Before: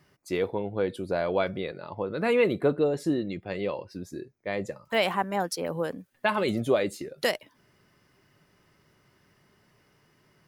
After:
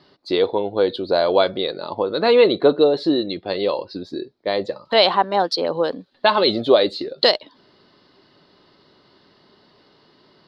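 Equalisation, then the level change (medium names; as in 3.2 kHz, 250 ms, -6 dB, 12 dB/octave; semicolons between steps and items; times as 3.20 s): peaking EQ 4.4 kHz +9.5 dB 1.7 oct; dynamic bell 220 Hz, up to -6 dB, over -40 dBFS, Q 1; FFT filter 130 Hz 0 dB, 270 Hz +12 dB, 1 kHz +10 dB, 2.4 kHz -2 dB, 4.2 kHz +13 dB, 6.1 kHz -13 dB, 14 kHz -23 dB; 0.0 dB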